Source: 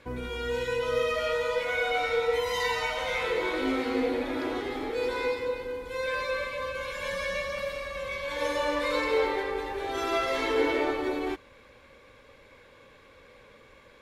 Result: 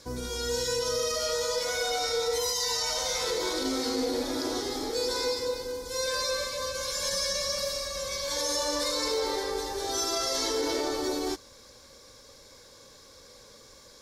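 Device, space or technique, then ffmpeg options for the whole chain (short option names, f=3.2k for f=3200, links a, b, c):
over-bright horn tweeter: -af "highshelf=f=3.7k:t=q:w=3:g=13.5,alimiter=limit=-20dB:level=0:latency=1:release=37"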